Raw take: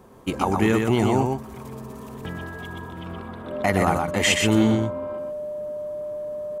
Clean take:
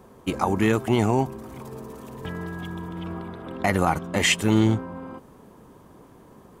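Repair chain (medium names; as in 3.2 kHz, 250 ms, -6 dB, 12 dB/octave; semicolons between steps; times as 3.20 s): band-stop 600 Hz, Q 30; inverse comb 123 ms -4.5 dB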